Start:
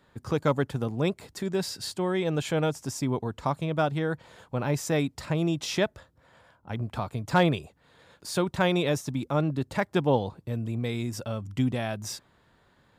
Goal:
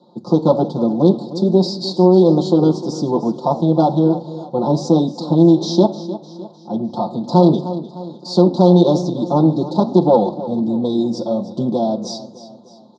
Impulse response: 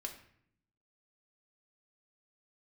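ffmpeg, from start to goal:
-filter_complex "[0:a]equalizer=f=370:w=3.7:g=-3.5,aecho=1:1:5.7:0.94,aeval=exprs='(tanh(7.94*val(0)+0.55)-tanh(0.55))/7.94':c=same,flanger=delay=8.8:depth=9.7:regen=-84:speed=1.2:shape=sinusoidal,asuperstop=centerf=2100:order=8:qfactor=0.57,highpass=f=200:w=0.5412,highpass=f=200:w=1.3066,equalizer=f=450:t=q:w=4:g=-4,equalizer=f=660:t=q:w=4:g=-5,equalizer=f=1100:t=q:w=4:g=-6,equalizer=f=2100:t=q:w=4:g=-8,equalizer=f=3800:t=q:w=4:g=6,lowpass=f=4300:w=0.5412,lowpass=f=4300:w=1.3066,aecho=1:1:304|608|912|1216:0.178|0.0836|0.0393|0.0185,asplit=2[s0][s1];[1:a]atrim=start_sample=2205,lowpass=5900[s2];[s1][s2]afir=irnorm=-1:irlink=0,volume=0.631[s3];[s0][s3]amix=inputs=2:normalize=0,alimiter=level_in=11.2:limit=0.891:release=50:level=0:latency=1,volume=0.891"

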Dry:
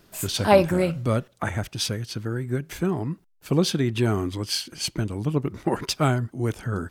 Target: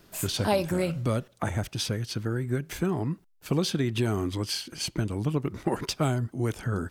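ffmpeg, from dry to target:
-filter_complex "[0:a]acrossover=split=960|3100[s0][s1][s2];[s0]acompressor=threshold=0.0708:ratio=4[s3];[s1]acompressor=threshold=0.0112:ratio=4[s4];[s2]acompressor=threshold=0.0282:ratio=4[s5];[s3][s4][s5]amix=inputs=3:normalize=0"

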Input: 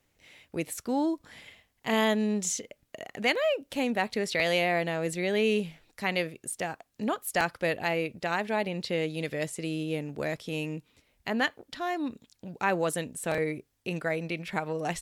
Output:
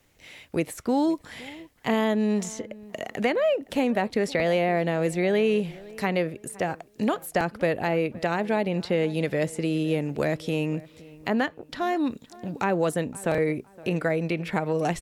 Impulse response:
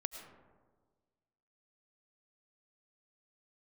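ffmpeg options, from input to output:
-filter_complex "[0:a]acrossover=split=570|1800[s0][s1][s2];[s0]acompressor=threshold=0.0316:ratio=4[s3];[s1]acompressor=threshold=0.0141:ratio=4[s4];[s2]acompressor=threshold=0.00447:ratio=4[s5];[s3][s4][s5]amix=inputs=3:normalize=0,asplit=2[s6][s7];[s7]adelay=516,lowpass=f=2100:p=1,volume=0.0944,asplit=2[s8][s9];[s9]adelay=516,lowpass=f=2100:p=1,volume=0.33,asplit=2[s10][s11];[s11]adelay=516,lowpass=f=2100:p=1,volume=0.33[s12];[s6][s8][s10][s12]amix=inputs=4:normalize=0,volume=2.51"

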